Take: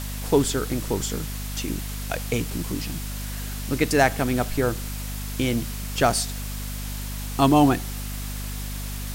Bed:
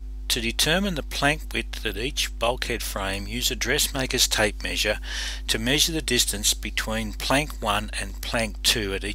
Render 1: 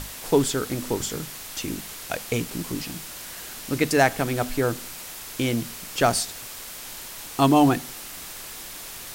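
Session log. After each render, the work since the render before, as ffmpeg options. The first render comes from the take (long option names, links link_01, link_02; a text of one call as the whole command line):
ffmpeg -i in.wav -af "bandreject=frequency=50:width_type=h:width=6,bandreject=frequency=100:width_type=h:width=6,bandreject=frequency=150:width_type=h:width=6,bandreject=frequency=200:width_type=h:width=6,bandreject=frequency=250:width_type=h:width=6" out.wav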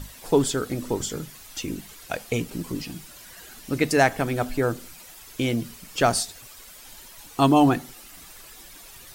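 ffmpeg -i in.wav -af "afftdn=noise_reduction=11:noise_floor=-39" out.wav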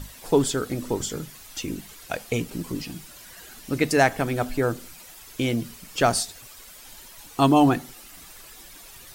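ffmpeg -i in.wav -af anull out.wav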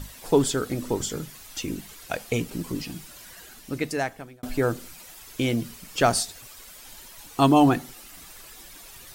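ffmpeg -i in.wav -filter_complex "[0:a]asplit=2[link_01][link_02];[link_01]atrim=end=4.43,asetpts=PTS-STARTPTS,afade=type=out:start_time=3.27:duration=1.16[link_03];[link_02]atrim=start=4.43,asetpts=PTS-STARTPTS,afade=type=in:duration=0.004:curve=hsin[link_04];[link_03][link_04]concat=n=2:v=0:a=1" out.wav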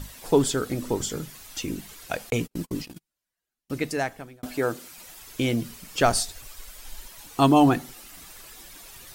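ffmpeg -i in.wav -filter_complex "[0:a]asettb=1/sr,asplit=3[link_01][link_02][link_03];[link_01]atrim=end=2.304[link_04];[link_02]atrim=start=2.3:end=3.7,asetpts=PTS-STARTPTS,afade=type=in:duration=0.004:curve=qsin,afade=type=out:start_time=1.396:duration=0.004:curve=qsin,agate=range=-42dB:threshold=-35dB:ratio=16:release=100:detection=peak[link_05];[link_03]atrim=start=3.696[link_06];[link_04][link_05]acrossfade=duration=0.004:curve1=hsin:curve2=qsin[link_07];[link_07][link_06]acrossfade=duration=0.004:curve1=qsin:curve2=hsin,asettb=1/sr,asplit=3[link_08][link_09][link_10];[link_08]atrim=end=4.464[link_11];[link_09]atrim=start=4.46:end=4.98,asetpts=PTS-STARTPTS,afade=type=in:duration=0.004:curve=qsin,afade=type=out:start_time=0.516:duration=0.004:curve=qsin,highpass=frequency=280:poles=1[link_12];[link_10]atrim=start=4.976[link_13];[link_11][link_12]acrossfade=duration=0.004:curve1=hsin:curve2=qsin[link_14];[link_14][link_13]acrossfade=duration=0.004:curve1=qsin:curve2=hsin,asplit=3[link_15][link_16][link_17];[link_15]afade=type=out:start_time=6.04:duration=0.02[link_18];[link_16]asubboost=boost=5:cutoff=62,afade=type=in:start_time=6.04:duration=0.02,afade=type=out:start_time=7.06:duration=0.02[link_19];[link_17]afade=type=in:start_time=7.06:duration=0.02[link_20];[link_18][link_19][link_20]amix=inputs=3:normalize=0" out.wav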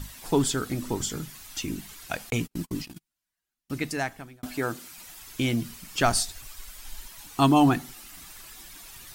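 ffmpeg -i in.wav -af "equalizer=frequency=500:width_type=o:width=0.75:gain=-8" out.wav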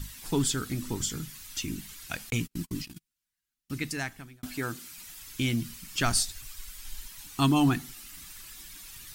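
ffmpeg -i in.wav -af "equalizer=frequency=630:width_type=o:width=1.7:gain=-10.5" out.wav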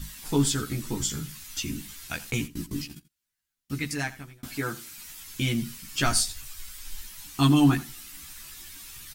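ffmpeg -i in.wav -filter_complex "[0:a]asplit=2[link_01][link_02];[link_02]adelay=14,volume=-2dB[link_03];[link_01][link_03]amix=inputs=2:normalize=0,aecho=1:1:85:0.126" out.wav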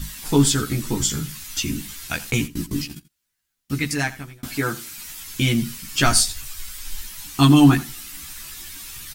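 ffmpeg -i in.wav -af "volume=7dB,alimiter=limit=-3dB:level=0:latency=1" out.wav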